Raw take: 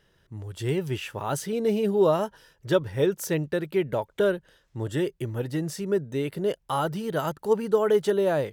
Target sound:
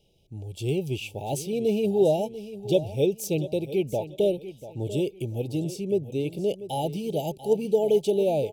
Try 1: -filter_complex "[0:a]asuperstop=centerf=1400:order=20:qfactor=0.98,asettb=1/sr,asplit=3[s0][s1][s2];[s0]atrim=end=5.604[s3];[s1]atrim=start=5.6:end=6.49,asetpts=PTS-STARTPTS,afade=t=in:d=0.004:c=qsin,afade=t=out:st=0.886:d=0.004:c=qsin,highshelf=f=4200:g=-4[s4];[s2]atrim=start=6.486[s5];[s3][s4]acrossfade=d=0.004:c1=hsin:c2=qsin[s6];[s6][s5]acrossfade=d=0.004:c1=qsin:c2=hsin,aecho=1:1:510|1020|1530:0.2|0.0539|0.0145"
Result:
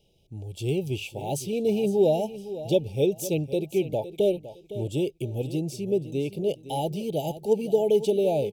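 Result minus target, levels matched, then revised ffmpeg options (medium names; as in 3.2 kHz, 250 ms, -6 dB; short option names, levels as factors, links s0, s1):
echo 181 ms early
-filter_complex "[0:a]asuperstop=centerf=1400:order=20:qfactor=0.98,asettb=1/sr,asplit=3[s0][s1][s2];[s0]atrim=end=5.604[s3];[s1]atrim=start=5.6:end=6.49,asetpts=PTS-STARTPTS,afade=t=in:d=0.004:c=qsin,afade=t=out:st=0.886:d=0.004:c=qsin,highshelf=f=4200:g=-4[s4];[s2]atrim=start=6.486[s5];[s3][s4]acrossfade=d=0.004:c1=hsin:c2=qsin[s6];[s6][s5]acrossfade=d=0.004:c1=qsin:c2=hsin,aecho=1:1:691|1382|2073:0.2|0.0539|0.0145"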